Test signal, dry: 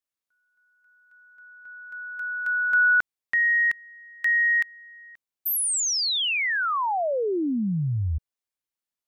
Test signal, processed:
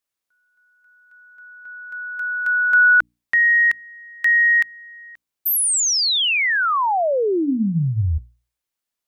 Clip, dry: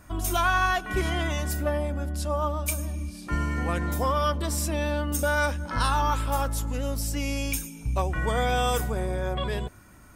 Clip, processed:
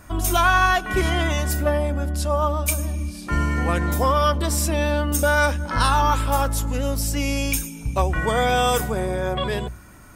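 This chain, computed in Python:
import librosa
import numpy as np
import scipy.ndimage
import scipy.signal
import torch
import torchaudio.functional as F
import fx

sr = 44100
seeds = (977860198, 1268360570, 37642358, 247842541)

y = fx.hum_notches(x, sr, base_hz=60, count=5)
y = y * 10.0 ** (6.0 / 20.0)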